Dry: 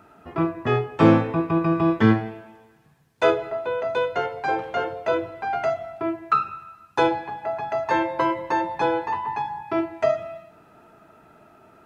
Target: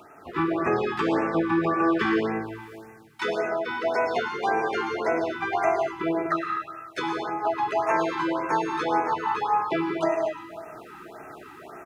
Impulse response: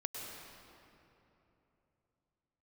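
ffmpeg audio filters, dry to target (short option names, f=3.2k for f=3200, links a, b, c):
-filter_complex "[0:a]highpass=f=59:p=1,lowshelf=f=200:g=-9,bandreject=f=510:w=12,aecho=1:1:2.6:0.36,bandreject=f=112.8:t=h:w=4,bandreject=f=225.6:t=h:w=4,bandreject=f=338.4:t=h:w=4,bandreject=f=451.2:t=h:w=4,bandreject=f=564:t=h:w=4,bandreject=f=676.8:t=h:w=4,bandreject=f=789.6:t=h:w=4,bandreject=f=902.4:t=h:w=4,bandreject=f=1.0152k:t=h:w=4,bandreject=f=1.128k:t=h:w=4,acrossover=split=300[a][b];[a]acompressor=threshold=-35dB:ratio=3[c];[c][b]amix=inputs=2:normalize=0,alimiter=limit=-17.5dB:level=0:latency=1:release=443,areverse,acompressor=mode=upward:threshold=-39dB:ratio=2.5,areverse,asplit=4[d][e][f][g];[e]asetrate=22050,aresample=44100,atempo=2,volume=-14dB[h];[f]asetrate=55563,aresample=44100,atempo=0.793701,volume=-15dB[i];[g]asetrate=66075,aresample=44100,atempo=0.66742,volume=-11dB[j];[d][h][i][j]amix=inputs=4:normalize=0,aecho=1:1:177|354|531|708|885:0.112|0.064|0.0365|0.0208|0.0118[k];[1:a]atrim=start_sample=2205,afade=t=out:st=0.31:d=0.01,atrim=end_sample=14112[l];[k][l]afir=irnorm=-1:irlink=0,afftfilt=real='re*(1-between(b*sr/1024,530*pow(4000/530,0.5+0.5*sin(2*PI*1.8*pts/sr))/1.41,530*pow(4000/530,0.5+0.5*sin(2*PI*1.8*pts/sr))*1.41))':imag='im*(1-between(b*sr/1024,530*pow(4000/530,0.5+0.5*sin(2*PI*1.8*pts/sr))/1.41,530*pow(4000/530,0.5+0.5*sin(2*PI*1.8*pts/sr))*1.41))':win_size=1024:overlap=0.75,volume=5dB"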